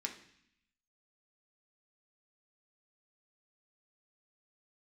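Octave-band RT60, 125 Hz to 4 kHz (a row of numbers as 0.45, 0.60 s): 0.95, 0.95, 0.60, 0.70, 0.90, 0.85 s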